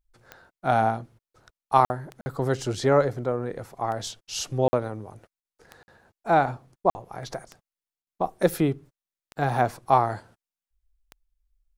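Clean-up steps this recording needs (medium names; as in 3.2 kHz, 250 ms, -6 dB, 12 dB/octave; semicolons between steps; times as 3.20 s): de-click; interpolate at 1.85/2.21/4.68/5.40/5.83/6.90/8.02 s, 50 ms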